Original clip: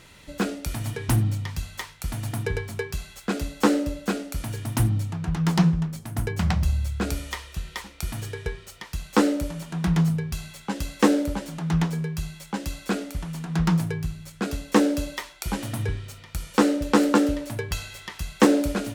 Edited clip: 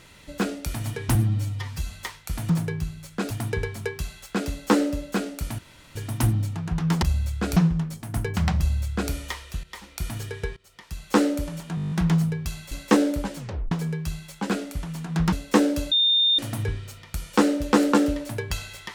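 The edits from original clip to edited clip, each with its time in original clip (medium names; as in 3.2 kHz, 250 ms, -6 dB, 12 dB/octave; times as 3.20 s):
1.15–1.66 s: stretch 1.5×
4.52 s: insert room tone 0.37 s
6.61–7.15 s: copy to 5.59 s
7.66–7.95 s: fade in, from -13.5 dB
8.59–9.22 s: fade in, from -20 dB
9.78 s: stutter 0.02 s, 9 plays
10.58–10.83 s: delete
11.49 s: tape stop 0.34 s
12.61–12.89 s: delete
13.72–14.53 s: move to 2.24 s
15.12–15.59 s: bleep 3.63 kHz -16.5 dBFS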